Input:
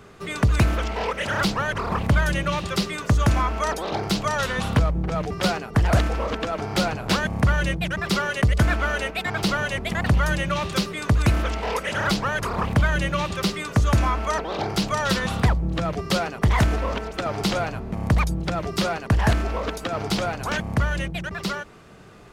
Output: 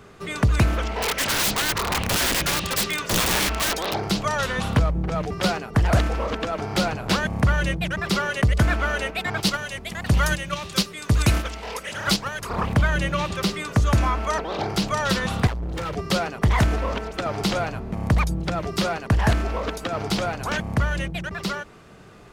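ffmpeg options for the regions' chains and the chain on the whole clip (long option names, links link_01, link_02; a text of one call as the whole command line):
ffmpeg -i in.wav -filter_complex "[0:a]asettb=1/sr,asplit=3[link_01][link_02][link_03];[link_01]atrim=end=1.024[link_04];[link_02]atrim=start=1.02:end=3.94,asetpts=PTS-STARTPTS,afade=type=in:duration=0.004:curve=qsin,afade=type=out:start_time=2.916:duration=0.004:curve=qsin,equalizer=frequency=3200:width=0.52:gain=7,aeval=exprs='(mod(7.08*val(0)+1,2)-1)/7.08':channel_layout=same[link_05];[link_03]atrim=start=3.936[link_06];[link_04][link_05]acrossfade=duration=0.004:curve1=hsin:curve2=qsin[link_07];[link_07][link_06]acrossfade=duration=0.004:curve1=qsin:curve2=hsin,asettb=1/sr,asplit=3[link_08][link_09][link_10];[link_08]atrim=end=9.404[link_11];[link_09]atrim=start=9.4:end=12.5,asetpts=PTS-STARTPTS,afade=type=in:duration=0.004:curve=qsin,afade=type=out:start_time=3.096:duration=0.004:curve=qsin,agate=range=-8dB:threshold=-23dB:ratio=16:release=100:detection=peak,highshelf=frequency=2900:gain=9.5[link_12];[link_10]atrim=start=12.496[link_13];[link_11][link_12]acrossfade=duration=0.004:curve1=hsin:curve2=qsin[link_14];[link_14][link_13]acrossfade=duration=0.004:curve1=qsin:curve2=hsin,asettb=1/sr,asplit=3[link_15][link_16][link_17];[link_15]atrim=end=15.474[link_18];[link_16]atrim=start=15.47:end=15.94,asetpts=PTS-STARTPTS,afade=type=in:duration=0.004:curve=qsin,afade=type=out:start_time=0.466:duration=0.004:curve=qsin,highpass=frequency=68:poles=1,aecho=1:1:2.2:0.89,atrim=end_sample=20727,volume=26.5dB,asoftclip=hard,volume=-26.5dB[link_19];[link_17]atrim=start=15.936[link_20];[link_18][link_19]acrossfade=duration=0.004:curve1=hsin:curve2=qsin[link_21];[link_21][link_20]acrossfade=duration=0.004:curve1=qsin:curve2=hsin" out.wav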